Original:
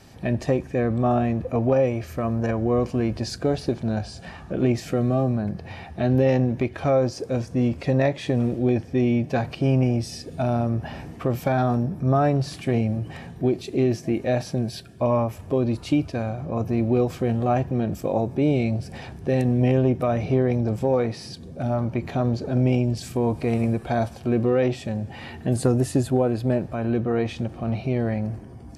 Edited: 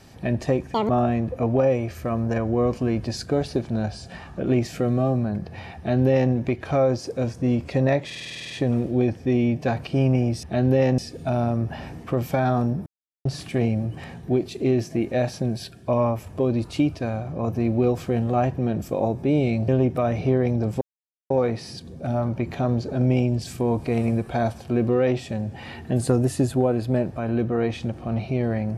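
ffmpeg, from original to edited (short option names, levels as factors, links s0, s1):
-filter_complex "[0:a]asplit=18[s0][s1][s2][s3][s4][s5][s6][s7][s8][s9][s10][s11][s12][s13][s14][s15][s16][s17];[s0]atrim=end=0.744[s18];[s1]atrim=start=0.74:end=1.02,asetpts=PTS-STARTPTS,asetrate=81144,aresample=44100[s19];[s2]atrim=start=1.016:end=8.232[s20];[s3]atrim=start=8.178:end=8.232[s21];[s4]atrim=start=8.178:end=8.232[s22];[s5]atrim=start=8.178:end=8.232[s23];[s6]atrim=start=8.178:end=8.232[s24];[s7]atrim=start=8.178:end=8.232[s25];[s8]atrim=start=8.178:end=8.232[s26];[s9]atrim=start=8.178:end=8.232[s27];[s10]atrim=start=8.178:end=8.232[s28];[s11]atrim=start=8.178:end=10.112[s29];[s12]atrim=start=5.898:end=6.452[s30];[s13]atrim=start=10.108:end=11.99,asetpts=PTS-STARTPTS,afade=t=out:st=1.878:d=0.004:c=hsin[s31];[s14]atrim=start=11.99:end=12.38,asetpts=PTS-STARTPTS,volume=0[s32];[s15]atrim=start=12.38:end=18.812,asetpts=PTS-STARTPTS,afade=t=in:d=0.004:c=hsin[s33];[s16]atrim=start=19.728:end=20.86,asetpts=PTS-STARTPTS,afade=t=out:st=1.128:d=0.004:c=hsin,apad=pad_dur=0.49[s34];[s17]atrim=start=20.86,asetpts=PTS-STARTPTS,afade=t=in:d=0.004:c=hsin[s35];[s18][s19]acrossfade=d=0.004:c1=hsin:c2=hsin[s36];[s36][s20]acrossfade=d=0.004:c1=hsin:c2=hsin[s37];[s37][s21]acrossfade=d=0.004:c1=hsin:c2=hsin[s38];[s38][s22]acrossfade=d=0.004:c1=hsin:c2=hsin[s39];[s39][s23]acrossfade=d=0.004:c1=hsin:c2=hsin[s40];[s40][s24]acrossfade=d=0.004:c1=hsin:c2=hsin[s41];[s41][s25]acrossfade=d=0.004:c1=hsin:c2=hsin[s42];[s42][s26]acrossfade=d=0.004:c1=hsin:c2=hsin[s43];[s43][s27]acrossfade=d=0.004:c1=hsin:c2=hsin[s44];[s44][s28]acrossfade=d=0.004:c1=hsin:c2=hsin[s45];[s45][s29]acrossfade=d=0.004:c1=hsin:c2=hsin[s46];[s46][s30]acrossfade=d=0.004:c1=hsin:c2=hsin[s47];[s31][s32][s33]concat=n=3:v=0:a=1[s48];[s47][s48]acrossfade=d=0.004:c1=hsin:c2=hsin[s49];[s34][s35]concat=n=2:v=0:a=1[s50];[s49][s50]acrossfade=d=0.004:c1=hsin:c2=hsin"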